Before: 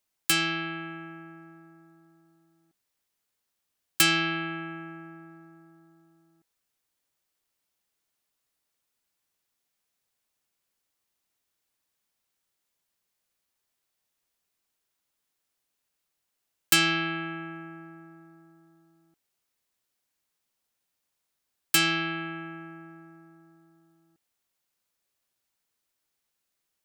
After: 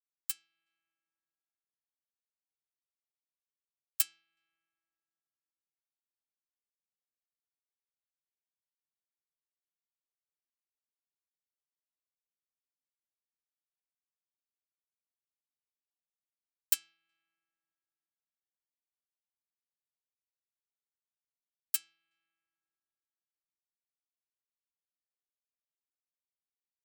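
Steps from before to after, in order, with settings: pre-emphasis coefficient 0.97; speakerphone echo 0.37 s, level -17 dB; upward expander 2.5:1, over -40 dBFS; gain -6.5 dB

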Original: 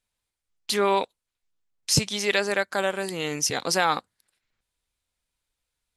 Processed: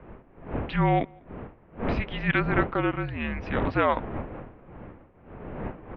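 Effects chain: wind noise 580 Hz -34 dBFS; mistuned SSB -240 Hz 180–2900 Hz; outdoor echo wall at 34 m, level -29 dB

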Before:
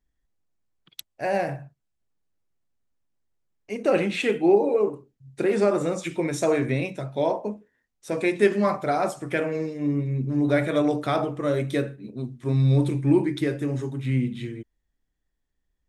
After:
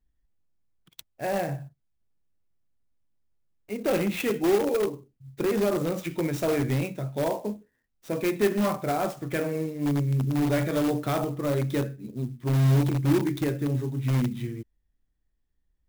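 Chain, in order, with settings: low shelf 230 Hz +8 dB; in parallel at -9.5 dB: wrapped overs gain 14.5 dB; on the sum: clock jitter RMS 0.028 ms; gain -6.5 dB

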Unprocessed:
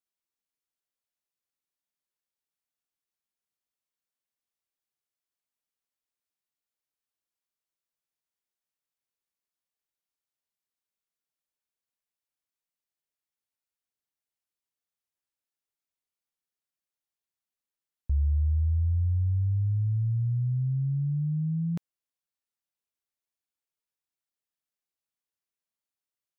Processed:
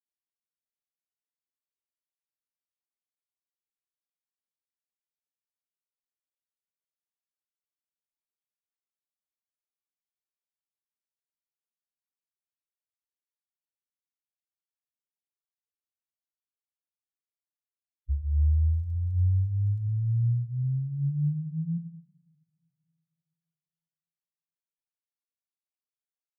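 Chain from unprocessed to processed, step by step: loudest bins only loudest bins 2; 18.31–19.92 crackle 26/s -54 dBFS; two-slope reverb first 0.86 s, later 2.8 s, from -28 dB, DRR 4 dB

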